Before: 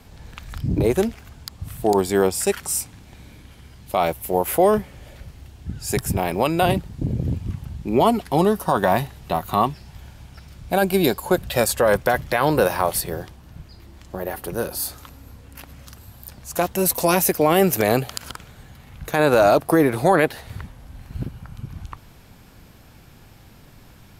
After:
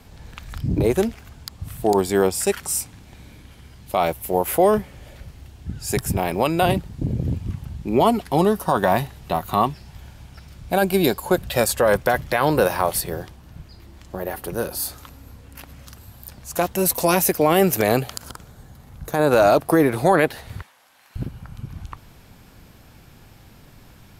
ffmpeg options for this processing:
-filter_complex "[0:a]asettb=1/sr,asplit=3[a][b][c];[a]atrim=end=18.144[d];[b]atrim=start=18.14:end=19.31,asetpts=PTS-STARTPTS,afade=t=in:d=0.004:c=qsin,afade=t=out:st=1.166:d=0.004:c=qsin,equalizer=f=2.5k:w=1:g=-9[e];[c]atrim=start=19.306[f];[d][e]acrossfade=d=0.004:c1=hsin:c2=qsin[g];[g][f]acrossfade=d=0.004:c1=qsin:c2=hsin,asettb=1/sr,asplit=3[h][i][j];[h]atrim=end=20.624[k];[i]atrim=start=20.62:end=21.16,asetpts=PTS-STARTPTS,afade=t=in:d=0.004:c=qsin,afade=t=out:st=0.536:d=0.004:c=qsin,highpass=870[l];[j]atrim=start=21.156[m];[k][l]acrossfade=d=0.004:c1=hsin:c2=qsin[n];[n][m]acrossfade=d=0.004:c1=qsin:c2=hsin"

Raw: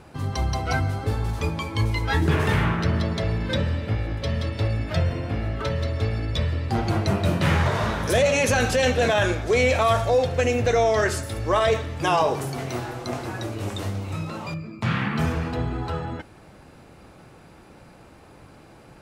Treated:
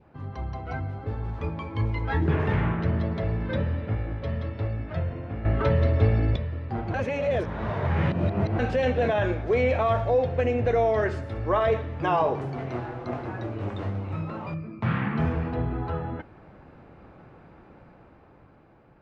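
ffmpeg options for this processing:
-filter_complex "[0:a]asplit=5[a][b][c][d][e];[a]atrim=end=5.452[f];[b]atrim=start=5.448:end=6.362,asetpts=PTS-STARTPTS,volume=11dB[g];[c]atrim=start=6.358:end=6.942[h];[d]atrim=start=6.938:end=8.592,asetpts=PTS-STARTPTS,areverse[i];[e]atrim=start=8.588[j];[f][g]acrossfade=d=0.004:c1=hsin:c2=hsin[k];[k][h]acrossfade=d=0.004:c1=hsin:c2=hsin[l];[l][i]acrossfade=d=0.004:c1=hsin:c2=hsin[m];[m][j]acrossfade=d=0.004:c1=hsin:c2=hsin,lowpass=1.9k,adynamicequalizer=threshold=0.01:dfrequency=1300:dqfactor=1.8:tfrequency=1300:tqfactor=1.8:attack=5:release=100:ratio=0.375:range=2.5:mode=cutabove:tftype=bell,dynaudnorm=f=310:g=9:m=7.5dB,volume=-8.5dB"

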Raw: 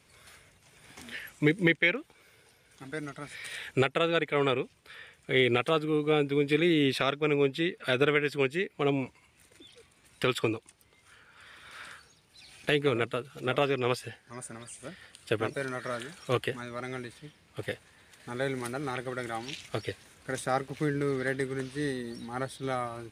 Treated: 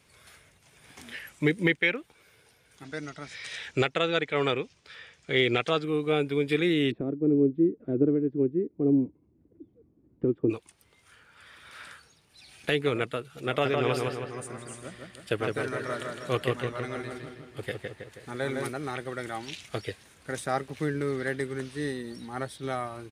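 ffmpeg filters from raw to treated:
-filter_complex "[0:a]asettb=1/sr,asplit=3[a][b][c];[a]atrim=end=2.844[d];[b]atrim=start=2.84:end=5.84,asetpts=PTS-STARTPTS,afade=t=in:d=0.004:c=qsin,afade=t=out:st=2.996:d=0.004:c=qsin,lowpass=f=6k:t=q:w=2.1[e];[c]atrim=start=5.836[f];[d][e]acrossfade=d=0.004:c1=hsin:c2=qsin[g];[g][f]acrossfade=d=0.004:c1=qsin:c2=hsin,asplit=3[h][i][j];[h]afade=t=out:st=6.9:d=0.02[k];[i]lowpass=f=310:t=q:w=3.2,afade=t=in:st=6.9:d=0.02,afade=t=out:st=10.49:d=0.02[l];[j]afade=t=in:st=10.49:d=0.02[m];[k][l][m]amix=inputs=3:normalize=0,asplit=3[n][o][p];[n]afade=t=out:st=13.64:d=0.02[q];[o]asplit=2[r][s];[s]adelay=160,lowpass=f=3.1k:p=1,volume=-3dB,asplit=2[t][u];[u]adelay=160,lowpass=f=3.1k:p=1,volume=0.55,asplit=2[v][w];[w]adelay=160,lowpass=f=3.1k:p=1,volume=0.55,asplit=2[x][y];[y]adelay=160,lowpass=f=3.1k:p=1,volume=0.55,asplit=2[z][aa];[aa]adelay=160,lowpass=f=3.1k:p=1,volume=0.55,asplit=2[ab][ac];[ac]adelay=160,lowpass=f=3.1k:p=1,volume=0.55,asplit=2[ad][ae];[ae]adelay=160,lowpass=f=3.1k:p=1,volume=0.55,asplit=2[af][ag];[ag]adelay=160,lowpass=f=3.1k:p=1,volume=0.55[ah];[r][t][v][x][z][ab][ad][af][ah]amix=inputs=9:normalize=0,afade=t=in:st=13.64:d=0.02,afade=t=out:st=18.68:d=0.02[ai];[p]afade=t=in:st=18.68:d=0.02[aj];[q][ai][aj]amix=inputs=3:normalize=0"

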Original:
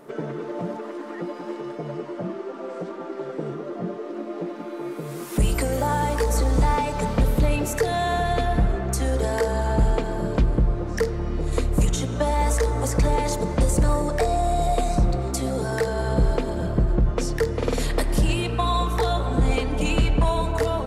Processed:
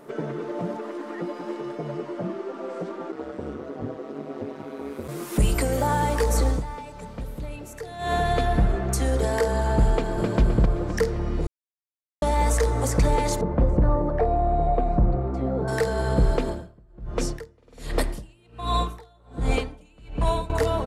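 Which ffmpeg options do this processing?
-filter_complex "[0:a]asplit=3[a][b][c];[a]afade=t=out:st=3.11:d=0.02[d];[b]aeval=exprs='val(0)*sin(2*PI*70*n/s)':c=same,afade=t=in:st=3.11:d=0.02,afade=t=out:st=5.07:d=0.02[e];[c]afade=t=in:st=5.07:d=0.02[f];[d][e][f]amix=inputs=3:normalize=0,asplit=2[g][h];[h]afade=t=in:st=9.91:d=0.01,afade=t=out:st=10.39:d=0.01,aecho=0:1:260|520|780|1040|1300|1560:0.595662|0.268048|0.120622|0.0542797|0.0244259|0.0109916[i];[g][i]amix=inputs=2:normalize=0,asettb=1/sr,asplit=3[j][k][l];[j]atrim=end=13.414[m];[k]atrim=start=13.41:end=15.68,asetpts=PTS-STARTPTS,afade=t=in:d=0.004:c=qsin,afade=t=out:st=2.266:d=0.004:c=qsin,lowpass=1.2k[n];[l]atrim=start=15.676[o];[m][n]acrossfade=d=0.004:c1=hsin:c2=qsin[p];[p][o]acrossfade=d=0.004:c1=qsin:c2=hsin,asettb=1/sr,asplit=3[q][r][s];[q]atrim=end=16.464[t];[r]atrim=start=16.46:end=20.5,asetpts=PTS-STARTPTS,afade=t=in:d=0.004:c=qsin,afade=t=out:st=4.036:d=0.004:c=qsin,aeval=exprs='val(0)*pow(10,-34*(0.5-0.5*cos(2*PI*1.3*n/s))/20)':c=same[u];[s]atrim=start=20.496[v];[t][u]acrossfade=d=0.004:c1=hsin:c2=qsin[w];[w][v]acrossfade=d=0.004:c1=qsin:c2=hsin,asplit=5[x][y][z][aa][ab];[x]atrim=end=6.63,asetpts=PTS-STARTPTS,afade=t=out:st=6.48:d=0.15:silence=0.199526[ac];[y]atrim=start=6.63:end=7.98,asetpts=PTS-STARTPTS,volume=-14dB[ad];[z]atrim=start=7.98:end=11.47,asetpts=PTS-STARTPTS,afade=t=in:d=0.15:silence=0.199526,afade=t=out:st=3.486:d=0.004:c=hsin[ae];[aa]atrim=start=11.47:end=12.22,asetpts=PTS-STARTPTS,volume=0[af];[ab]atrim=start=12.22,asetpts=PTS-STARTPTS,afade=t=in:d=0.004:c=hsin[ag];[ac][ad][ae][af][ag]concat=n=5:v=0:a=1"

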